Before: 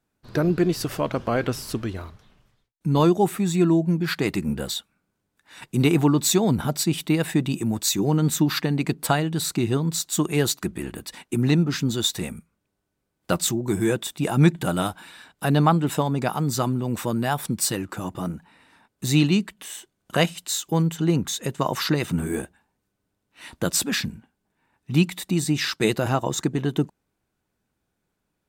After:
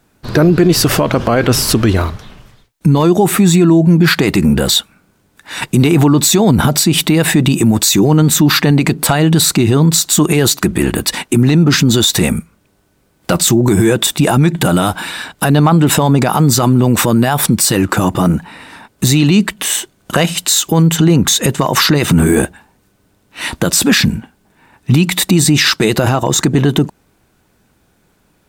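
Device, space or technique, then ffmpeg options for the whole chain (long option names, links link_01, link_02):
loud club master: -af "acompressor=threshold=-22dB:ratio=2,asoftclip=type=hard:threshold=-12.5dB,alimiter=level_in=22dB:limit=-1dB:release=50:level=0:latency=1,volume=-1dB"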